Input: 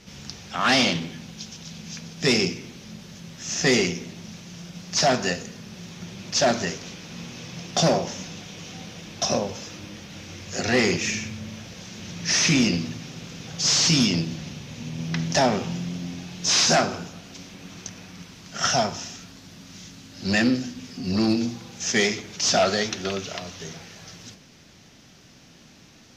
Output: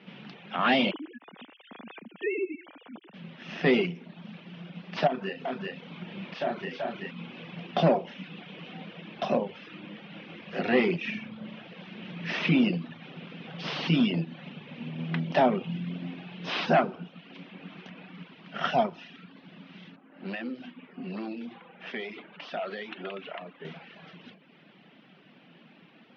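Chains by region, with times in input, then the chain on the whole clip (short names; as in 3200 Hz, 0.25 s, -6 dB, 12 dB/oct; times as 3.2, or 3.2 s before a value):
0.91–3.14 sine-wave speech + compressor 3:1, threshold -26 dBFS
5.07–7.11 echo 0.382 s -6 dB + compressor 2:1, threshold -33 dBFS + doubler 31 ms -3 dB
19.96–23.65 low-pass opened by the level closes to 1400 Hz, open at -16.5 dBFS + bell 77 Hz -14.5 dB 2.2 oct + compressor 3:1, threshold -32 dBFS
whole clip: reverb removal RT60 0.68 s; elliptic band-pass 170–3000 Hz, stop band 40 dB; dynamic EQ 2000 Hz, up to -4 dB, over -37 dBFS, Q 0.89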